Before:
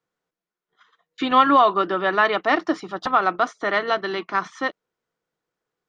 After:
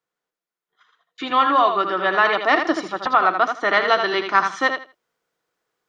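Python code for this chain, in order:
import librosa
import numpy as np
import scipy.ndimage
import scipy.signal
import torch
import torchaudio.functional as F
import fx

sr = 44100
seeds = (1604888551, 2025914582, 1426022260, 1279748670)

y = fx.low_shelf(x, sr, hz=350.0, db=-9.0)
y = fx.rider(y, sr, range_db=4, speed_s=0.5)
y = fx.air_absorb(y, sr, metres=110.0, at=(3.03, 3.55))
y = fx.echo_feedback(y, sr, ms=80, feedback_pct=19, wet_db=-7)
y = y * 10.0 ** (3.0 / 20.0)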